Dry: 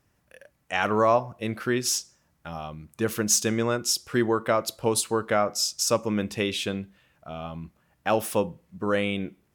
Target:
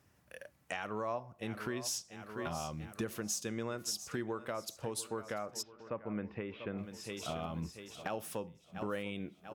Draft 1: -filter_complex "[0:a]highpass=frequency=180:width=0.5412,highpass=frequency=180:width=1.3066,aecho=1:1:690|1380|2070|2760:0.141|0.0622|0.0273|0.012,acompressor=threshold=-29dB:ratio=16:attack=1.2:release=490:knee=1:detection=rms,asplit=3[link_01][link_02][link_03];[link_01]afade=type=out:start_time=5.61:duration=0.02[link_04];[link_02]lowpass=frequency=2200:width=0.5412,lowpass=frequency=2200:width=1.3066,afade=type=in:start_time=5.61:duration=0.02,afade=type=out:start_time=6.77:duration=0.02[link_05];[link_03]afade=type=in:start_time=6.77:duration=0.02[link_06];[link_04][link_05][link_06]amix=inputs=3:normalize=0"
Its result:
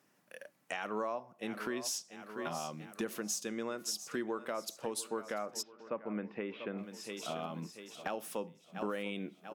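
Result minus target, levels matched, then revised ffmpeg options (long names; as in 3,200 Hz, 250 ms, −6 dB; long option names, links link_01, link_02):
125 Hz band −6.5 dB
-filter_complex "[0:a]highpass=frequency=55:width=0.5412,highpass=frequency=55:width=1.3066,aecho=1:1:690|1380|2070|2760:0.141|0.0622|0.0273|0.012,acompressor=threshold=-29dB:ratio=16:attack=1.2:release=490:knee=1:detection=rms,asplit=3[link_01][link_02][link_03];[link_01]afade=type=out:start_time=5.61:duration=0.02[link_04];[link_02]lowpass=frequency=2200:width=0.5412,lowpass=frequency=2200:width=1.3066,afade=type=in:start_time=5.61:duration=0.02,afade=type=out:start_time=6.77:duration=0.02[link_05];[link_03]afade=type=in:start_time=6.77:duration=0.02[link_06];[link_04][link_05][link_06]amix=inputs=3:normalize=0"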